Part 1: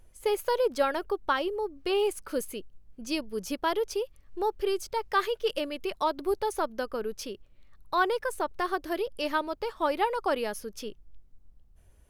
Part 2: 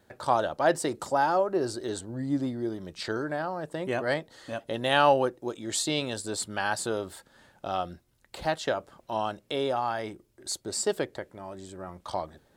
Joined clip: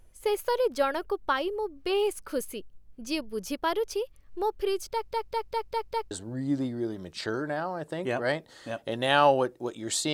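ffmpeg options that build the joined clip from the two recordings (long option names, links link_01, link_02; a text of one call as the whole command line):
ffmpeg -i cue0.wav -i cue1.wav -filter_complex "[0:a]apad=whole_dur=10.13,atrim=end=10.13,asplit=6[link_01][link_02][link_03][link_04][link_05][link_06];[link_01]atrim=end=5.112[link_07];[link_02]atrim=start=4.908:end=5.112[link_08];[link_03]atrim=start=4.908:end=5.112[link_09];[link_04]atrim=start=4.908:end=5.112[link_10];[link_05]atrim=start=4.908:end=5.112[link_11];[link_06]atrim=start=4.908:end=5.112[link_12];[1:a]atrim=start=1.928:end=5.95[link_13];[link_07][link_08]acrossfade=duration=0.004:curve1=hsin:curve2=hsin[link_14];[link_14][link_09]acrossfade=duration=0.004:curve1=hsin:curve2=hsin[link_15];[link_15][link_10]acrossfade=duration=0.004:curve1=hsin:curve2=hsin[link_16];[link_16][link_11]acrossfade=duration=0.004:curve1=hsin:curve2=hsin[link_17];[link_17][link_12]acrossfade=duration=0.004:curve1=hsin:curve2=hsin[link_18];[link_18][link_13]acrossfade=duration=0.004:curve1=hsin:curve2=hsin" out.wav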